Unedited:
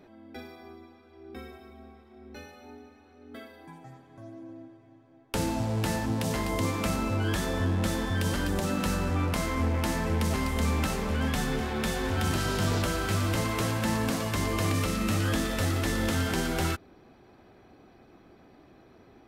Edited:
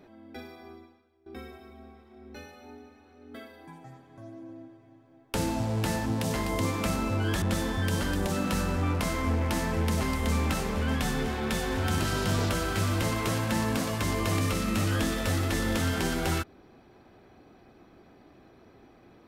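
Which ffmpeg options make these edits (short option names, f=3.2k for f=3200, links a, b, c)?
-filter_complex "[0:a]asplit=3[a][b][c];[a]atrim=end=1.26,asetpts=PTS-STARTPTS,afade=t=out:st=0.77:d=0.49:c=qua:silence=0.11885[d];[b]atrim=start=1.26:end=7.422,asetpts=PTS-STARTPTS,afade=t=in:d=0.004:c=hsin:silence=0.11885[e];[c]atrim=start=7.748[f];[d][e]concat=n=2:v=0:a=1[g];[g][f]acrossfade=d=0.004:c1=hsin:c2=hsin"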